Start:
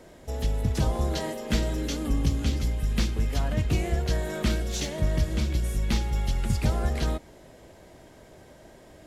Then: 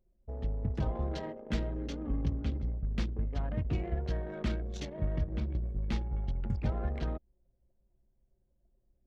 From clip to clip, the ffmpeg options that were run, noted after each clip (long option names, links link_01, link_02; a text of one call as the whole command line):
ffmpeg -i in.wav -af "aemphasis=mode=reproduction:type=cd,anlmdn=15.8,volume=-7.5dB" out.wav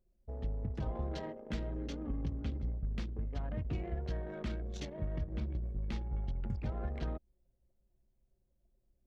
ffmpeg -i in.wav -af "alimiter=level_in=1dB:limit=-24dB:level=0:latency=1:release=183,volume=-1dB,volume=-2.5dB" out.wav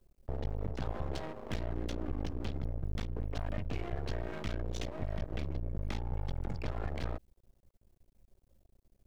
ffmpeg -i in.wav -filter_complex "[0:a]acrossover=split=120|370|1700[link_01][link_02][link_03][link_04];[link_01]acompressor=threshold=-45dB:ratio=4[link_05];[link_02]acompressor=threshold=-55dB:ratio=4[link_06];[link_03]acompressor=threshold=-52dB:ratio=4[link_07];[link_04]acompressor=threshold=-55dB:ratio=4[link_08];[link_05][link_06][link_07][link_08]amix=inputs=4:normalize=0,aeval=exprs='max(val(0),0)':channel_layout=same,volume=12dB" out.wav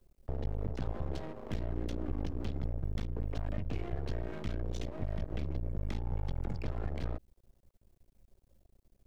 ffmpeg -i in.wav -filter_complex "[0:a]acrossover=split=500[link_01][link_02];[link_02]acompressor=threshold=-50dB:ratio=2.5[link_03];[link_01][link_03]amix=inputs=2:normalize=0,volume=1dB" out.wav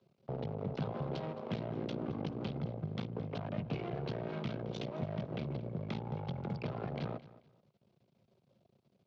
ffmpeg -i in.wav -af "highpass=frequency=130:width=0.5412,highpass=frequency=130:width=1.3066,equalizer=frequency=150:width_type=q:width=4:gain=4,equalizer=frequency=300:width_type=q:width=4:gain=-7,equalizer=frequency=1800:width_type=q:width=4:gain=-7,lowpass=frequency=4600:width=0.5412,lowpass=frequency=4600:width=1.3066,aecho=1:1:218|436:0.133|0.0333,volume=4dB" out.wav